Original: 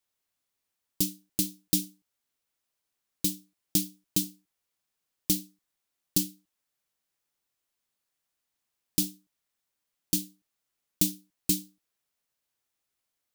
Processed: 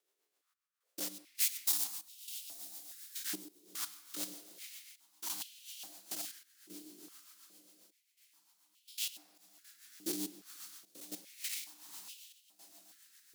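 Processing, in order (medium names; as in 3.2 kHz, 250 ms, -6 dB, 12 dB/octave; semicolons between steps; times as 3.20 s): spectrogram pixelated in time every 100 ms; peak limiter -21.5 dBFS, peak gain reduction 5.5 dB; saturation -35 dBFS, distortion -9 dB; 1.40–1.84 s: treble shelf 4.8 kHz +10 dB; echo that smears into a reverb 497 ms, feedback 56%, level -9 dB; rotary cabinet horn 7.5 Hz; on a send at -12 dB: reverberation RT60 2.1 s, pre-delay 10 ms; on the sum: trance gate "xxxx..xxxxx" 112 bpm -12 dB; step-sequenced high-pass 2.4 Hz 390–2900 Hz; trim +4.5 dB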